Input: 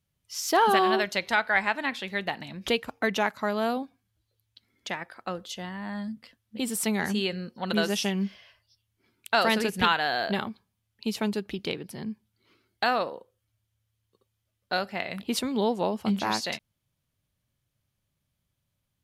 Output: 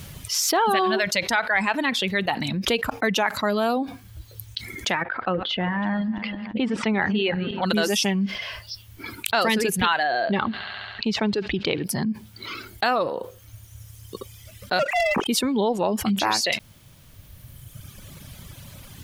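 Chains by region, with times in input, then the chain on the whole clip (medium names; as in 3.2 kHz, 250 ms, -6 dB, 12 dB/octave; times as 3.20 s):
5.02–7.62 s: backward echo that repeats 166 ms, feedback 44%, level -12.5 dB + low-pass 3 kHz 24 dB/octave
10.03–11.84 s: distance through air 190 m + feedback echo behind a high-pass 69 ms, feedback 79%, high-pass 1.8 kHz, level -18 dB
14.79–15.27 s: formants replaced by sine waves + waveshaping leveller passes 3
whole clip: reverb removal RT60 1.4 s; level flattener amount 70%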